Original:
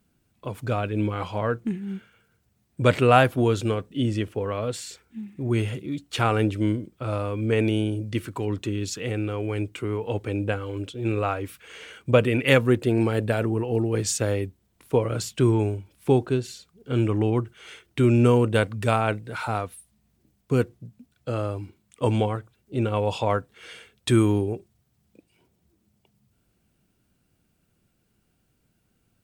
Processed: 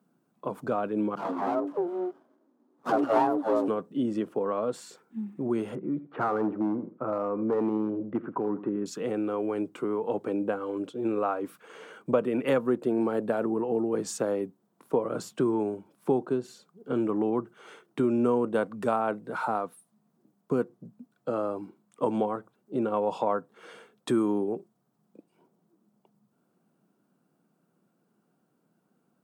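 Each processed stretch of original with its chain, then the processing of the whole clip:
0:01.15–0:03.68: all-pass dispersion lows, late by 137 ms, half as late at 500 Hz + frequency shifter +170 Hz + windowed peak hold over 17 samples
0:05.75–0:08.86: low-pass filter 1,900 Hz 24 dB per octave + gain into a clipping stage and back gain 18.5 dB + repeating echo 83 ms, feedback 22%, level −16 dB
whole clip: Butterworth high-pass 160 Hz 36 dB per octave; high shelf with overshoot 1,600 Hz −10.5 dB, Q 1.5; downward compressor 2 to 1, threshold −28 dBFS; level +1.5 dB

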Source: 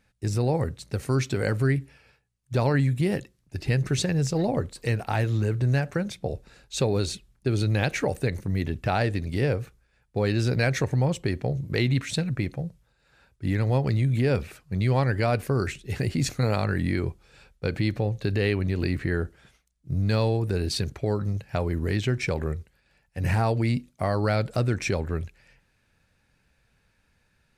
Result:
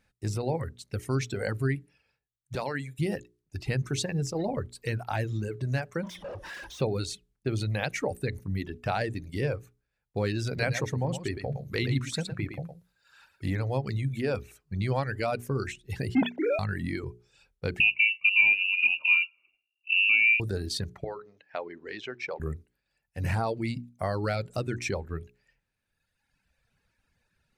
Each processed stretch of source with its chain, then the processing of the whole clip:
0:02.55–0:02.99: high-pass filter 130 Hz + low-shelf EQ 470 Hz −8.5 dB
0:06.03–0:06.81: EQ curve with evenly spaced ripples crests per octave 1.2, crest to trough 10 dB + downward compressor 3 to 1, threshold −49 dBFS + mid-hump overdrive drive 45 dB, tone 1,700 Hz, clips at −25.5 dBFS
0:10.47–0:13.50: single-tap delay 113 ms −4.5 dB + one half of a high-frequency compander encoder only
0:16.15–0:16.59: three sine waves on the formant tracks + Butterworth band-reject 1,200 Hz, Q 3.2 + leveller curve on the samples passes 1
0:17.80–0:20.40: low shelf with overshoot 690 Hz +13.5 dB, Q 3 + tuned comb filter 360 Hz, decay 0.38 s, mix 70% + voice inversion scrambler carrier 2,800 Hz
0:21.04–0:22.40: band-pass filter 460–6,900 Hz + high-frequency loss of the air 130 metres
whole clip: reverb reduction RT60 1.6 s; mains-hum notches 60/120/180/240/300/360/420 Hz; level −3 dB

